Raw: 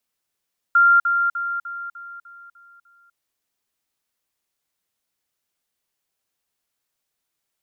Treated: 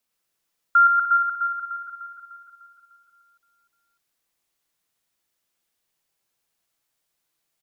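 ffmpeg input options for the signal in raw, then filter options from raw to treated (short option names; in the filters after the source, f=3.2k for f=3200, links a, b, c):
-f lavfi -i "aevalsrc='pow(10,(-10.5-6*floor(t/0.3))/20)*sin(2*PI*1390*t)*clip(min(mod(t,0.3),0.25-mod(t,0.3))/0.005,0,1)':d=2.4:s=44100"
-af "aecho=1:1:111|117|228|876:0.596|0.501|0.282|0.119"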